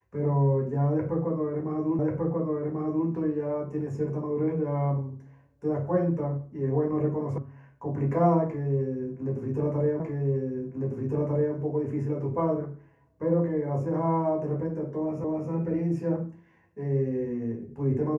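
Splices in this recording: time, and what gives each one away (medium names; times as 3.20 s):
1.99 s: repeat of the last 1.09 s
7.38 s: sound stops dead
10.00 s: repeat of the last 1.55 s
15.24 s: repeat of the last 0.27 s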